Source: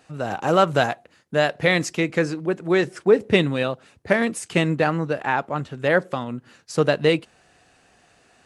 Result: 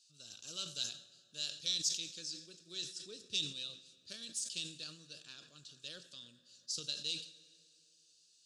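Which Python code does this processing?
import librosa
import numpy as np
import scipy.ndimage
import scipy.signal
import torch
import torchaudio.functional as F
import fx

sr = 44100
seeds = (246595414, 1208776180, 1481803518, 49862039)

y = fx.tracing_dist(x, sr, depth_ms=0.025)
y = scipy.signal.sosfilt(scipy.signal.cheby2(4, 40, 2200.0, 'highpass', fs=sr, output='sos'), y)
y = fx.air_absorb(y, sr, metres=100.0)
y = fx.rev_fdn(y, sr, rt60_s=2.8, lf_ratio=1.0, hf_ratio=0.6, size_ms=56.0, drr_db=12.5)
y = fx.sustainer(y, sr, db_per_s=110.0)
y = F.gain(torch.from_numpy(y), 5.0).numpy()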